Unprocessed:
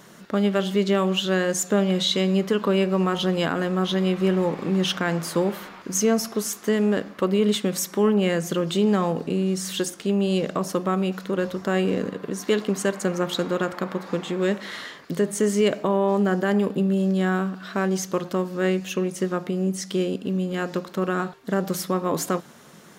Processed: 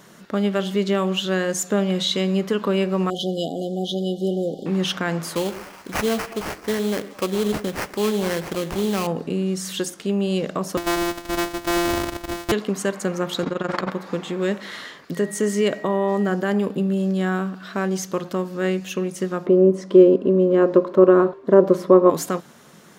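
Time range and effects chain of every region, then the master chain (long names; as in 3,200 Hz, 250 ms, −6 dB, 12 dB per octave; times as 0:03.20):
0:03.10–0:04.66: linear-phase brick-wall band-stop 800–2,900 Hz + parametric band 77 Hz −12.5 dB 1.6 octaves
0:05.35–0:09.07: low-shelf EQ 280 Hz −5.5 dB + sample-rate reduction 3,700 Hz, jitter 20% + echo through a band-pass that steps 107 ms, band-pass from 330 Hz, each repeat 1.4 octaves, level −11 dB
0:10.77–0:12.52: samples sorted by size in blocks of 256 samples + comb filter 3.1 ms, depth 94%
0:13.43–0:13.91: low-pass filter 7,000 Hz + amplitude modulation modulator 22 Hz, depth 85% + envelope flattener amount 100%
0:15.14–0:16.28: high-pass filter 110 Hz + steady tone 1,900 Hz −40 dBFS
0:19.46–0:22.10: low-pass filter 1,500 Hz 6 dB per octave + hollow resonant body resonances 380/550/1,000 Hz, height 15 dB, ringing for 30 ms
whole clip: no processing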